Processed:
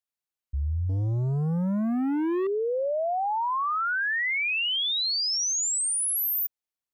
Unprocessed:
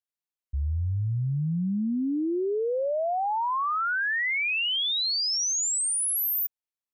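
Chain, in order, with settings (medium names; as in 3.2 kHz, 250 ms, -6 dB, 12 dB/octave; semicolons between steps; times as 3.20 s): 0.89–2.47 s: waveshaping leveller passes 2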